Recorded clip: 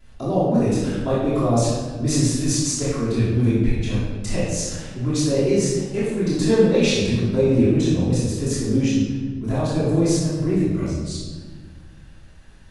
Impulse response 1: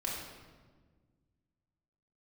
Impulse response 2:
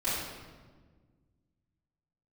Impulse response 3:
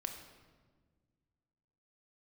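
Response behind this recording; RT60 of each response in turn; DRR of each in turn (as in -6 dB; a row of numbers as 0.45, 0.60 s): 2; 1.5, 1.5, 1.5 s; -5.0, -14.5, 4.0 dB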